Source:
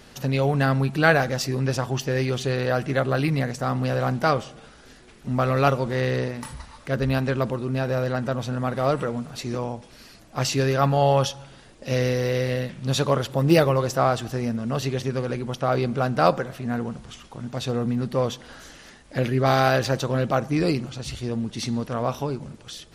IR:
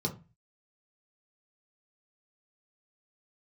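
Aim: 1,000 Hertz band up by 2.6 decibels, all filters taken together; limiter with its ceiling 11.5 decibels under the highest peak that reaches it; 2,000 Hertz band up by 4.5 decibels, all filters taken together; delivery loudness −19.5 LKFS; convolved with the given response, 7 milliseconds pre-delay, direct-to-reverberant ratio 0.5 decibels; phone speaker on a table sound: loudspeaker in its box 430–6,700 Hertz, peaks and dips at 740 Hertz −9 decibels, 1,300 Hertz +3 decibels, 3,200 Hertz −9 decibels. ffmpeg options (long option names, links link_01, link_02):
-filter_complex "[0:a]equalizer=frequency=1000:width_type=o:gain=4.5,equalizer=frequency=2000:width_type=o:gain=4,alimiter=limit=-10.5dB:level=0:latency=1,asplit=2[link_01][link_02];[1:a]atrim=start_sample=2205,adelay=7[link_03];[link_02][link_03]afir=irnorm=-1:irlink=0,volume=-5dB[link_04];[link_01][link_04]amix=inputs=2:normalize=0,highpass=frequency=430:width=0.5412,highpass=frequency=430:width=1.3066,equalizer=frequency=740:width_type=q:width=4:gain=-9,equalizer=frequency=1300:width_type=q:width=4:gain=3,equalizer=frequency=3200:width_type=q:width=4:gain=-9,lowpass=frequency=6700:width=0.5412,lowpass=frequency=6700:width=1.3066,volume=4dB"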